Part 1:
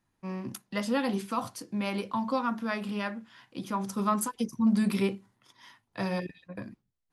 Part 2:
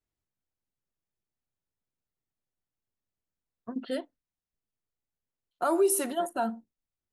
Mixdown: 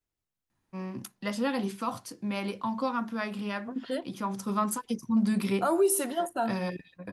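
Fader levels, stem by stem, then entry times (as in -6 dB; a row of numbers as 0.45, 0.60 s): -1.0, 0.0 dB; 0.50, 0.00 s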